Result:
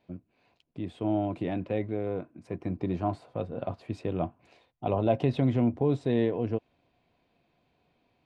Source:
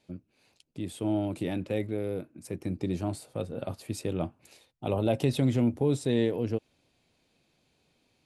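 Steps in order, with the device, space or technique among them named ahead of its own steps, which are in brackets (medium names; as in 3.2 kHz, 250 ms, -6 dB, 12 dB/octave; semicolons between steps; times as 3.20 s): inside a cardboard box (low-pass 2.7 kHz 12 dB/octave; small resonant body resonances 710/1000 Hz, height 9 dB); 2.06–3.30 s: dynamic bell 1.1 kHz, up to +4 dB, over -49 dBFS, Q 1.2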